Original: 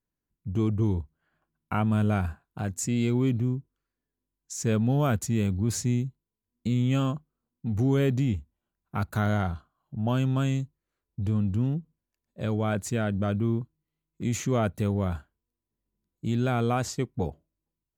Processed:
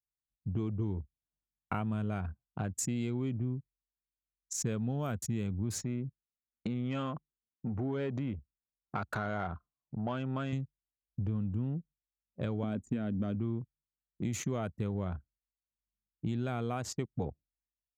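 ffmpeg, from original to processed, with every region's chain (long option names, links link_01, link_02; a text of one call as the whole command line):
ffmpeg -i in.wav -filter_complex "[0:a]asettb=1/sr,asplit=3[link_01][link_02][link_03];[link_01]atrim=end=5.784[link_04];[link_02]atrim=start=5.78:end=10.53,asetpts=PTS-STARTPTS,afade=type=in:duration=0.004:curve=qsin,afade=type=out:start_time=4.746:duration=0.004:curve=qsin,acompressor=threshold=-31dB:ratio=2:attack=3.2:release=140:knee=1:detection=peak,asplit=2[link_05][link_06];[link_06]highpass=frequency=720:poles=1,volume=15dB,asoftclip=type=tanh:threshold=-18.5dB[link_07];[link_05][link_07]amix=inputs=2:normalize=0,lowpass=frequency=2100:poles=1,volume=-6dB[link_08];[link_03]atrim=start=10.526[link_09];[link_04][link_08]acrossfade=duration=0.004:curve1=hsin:curve2=qsin[link_10];[link_10][link_09]acrossfade=duration=0.004:curve1=qsin:curve2=hsin,asettb=1/sr,asplit=3[link_11][link_12][link_13];[link_11]atrim=end=12.634[link_14];[link_12]atrim=start=12.63:end=13.35,asetpts=PTS-STARTPTS,afade=type=in:duration=0.004:curve=qsin,afade=type=out:start_time=0.716:duration=0.004:curve=qsin,equalizer=frequency=250:width=3.3:gain=14,acrossover=split=780|2800[link_15][link_16][link_17];[link_15]acompressor=threshold=-21dB:ratio=4[link_18];[link_16]acompressor=threshold=-42dB:ratio=4[link_19];[link_17]acompressor=threshold=-44dB:ratio=4[link_20];[link_18][link_19][link_20]amix=inputs=3:normalize=0[link_21];[link_13]atrim=start=13.346[link_22];[link_14][link_21]acrossfade=duration=0.004:curve1=hsin:curve2=qsin[link_23];[link_23][link_22]acrossfade=duration=0.004:curve1=qsin:curve2=hsin,highpass=59,anlmdn=1.58,acompressor=threshold=-31dB:ratio=5" out.wav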